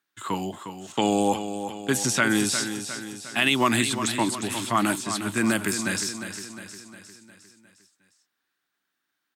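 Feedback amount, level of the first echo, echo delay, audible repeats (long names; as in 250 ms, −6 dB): 53%, −9.5 dB, 356 ms, 5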